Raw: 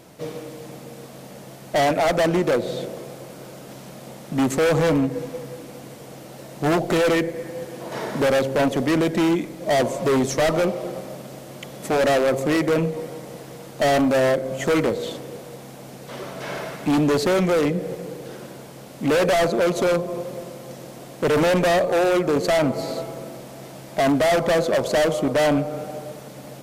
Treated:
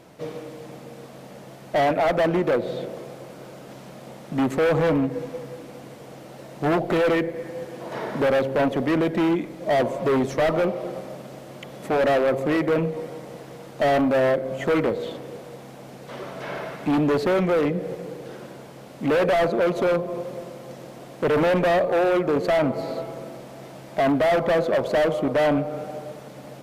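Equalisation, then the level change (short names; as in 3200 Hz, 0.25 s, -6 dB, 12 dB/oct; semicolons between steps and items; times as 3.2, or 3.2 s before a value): dynamic EQ 6900 Hz, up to -7 dB, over -45 dBFS, Q 0.84; low shelf 340 Hz -3 dB; high shelf 4600 Hz -9.5 dB; 0.0 dB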